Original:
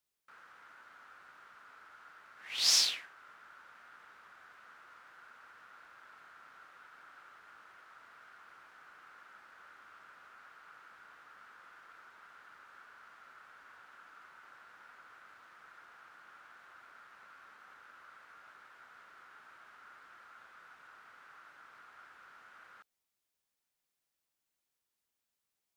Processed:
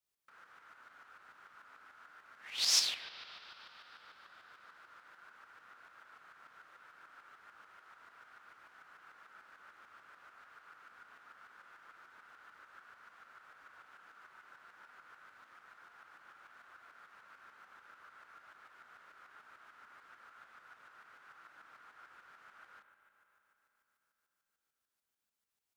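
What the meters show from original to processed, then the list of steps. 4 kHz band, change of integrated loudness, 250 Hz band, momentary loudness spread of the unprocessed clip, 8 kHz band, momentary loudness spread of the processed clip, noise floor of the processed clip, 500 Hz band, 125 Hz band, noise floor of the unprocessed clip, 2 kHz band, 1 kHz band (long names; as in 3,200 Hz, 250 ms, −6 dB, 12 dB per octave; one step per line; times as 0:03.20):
−2.5 dB, −5.5 dB, −2.0 dB, 17 LU, −2.0 dB, 24 LU, below −85 dBFS, −2.0 dB, −2.0 dB, below −85 dBFS, −2.0 dB, −2.0 dB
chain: spring reverb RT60 3.9 s, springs 31/35 ms, chirp 40 ms, DRR 7.5 dB
shaped tremolo saw up 6.8 Hz, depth 55%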